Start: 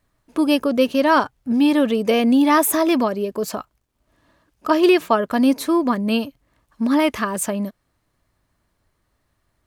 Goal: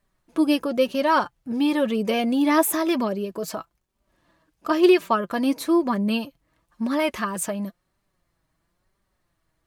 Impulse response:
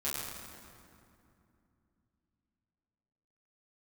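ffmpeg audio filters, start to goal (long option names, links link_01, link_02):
-af "flanger=delay=5:depth=1.4:regen=35:speed=1:shape=triangular"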